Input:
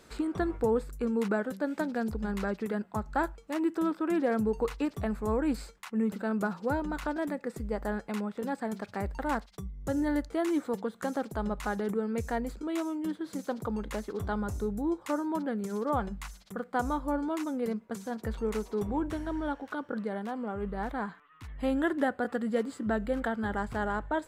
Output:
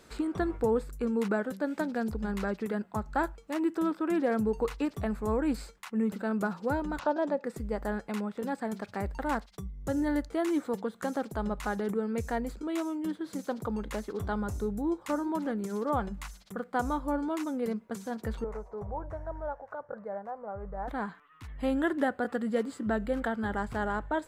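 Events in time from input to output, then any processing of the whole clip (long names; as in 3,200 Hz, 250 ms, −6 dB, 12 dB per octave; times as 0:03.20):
0:06.99–0:07.44: loudspeaker in its box 190–6,200 Hz, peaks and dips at 570 Hz +9 dB, 900 Hz +6 dB, 2,100 Hz −9 dB
0:14.72–0:15.16: delay throw 360 ms, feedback 35%, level −16.5 dB
0:18.44–0:20.88: drawn EQ curve 140 Hz 0 dB, 270 Hz −21 dB, 590 Hz +3 dB, 2,000 Hz −11 dB, 3,200 Hz −28 dB, 6,100 Hz −19 dB, 12,000 Hz −26 dB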